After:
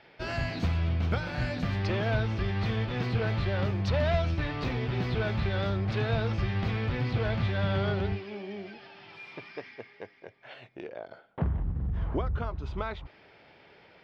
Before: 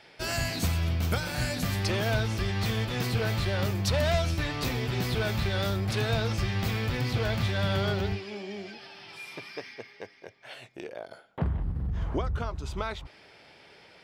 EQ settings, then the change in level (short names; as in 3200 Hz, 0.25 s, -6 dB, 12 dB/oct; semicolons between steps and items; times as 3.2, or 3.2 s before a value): air absorption 250 m; 0.0 dB